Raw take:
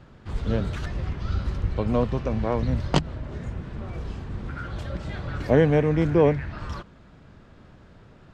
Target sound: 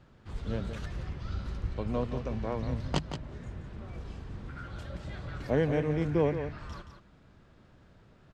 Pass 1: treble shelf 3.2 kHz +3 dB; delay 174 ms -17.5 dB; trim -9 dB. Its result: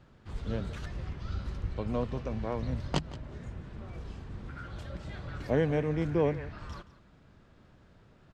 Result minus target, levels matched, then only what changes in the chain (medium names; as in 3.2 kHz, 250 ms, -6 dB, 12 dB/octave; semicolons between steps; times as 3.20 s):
echo-to-direct -8.5 dB
change: delay 174 ms -9 dB